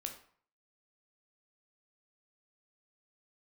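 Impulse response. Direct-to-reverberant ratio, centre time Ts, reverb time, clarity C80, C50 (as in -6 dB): 3.5 dB, 16 ms, 0.50 s, 13.0 dB, 9.0 dB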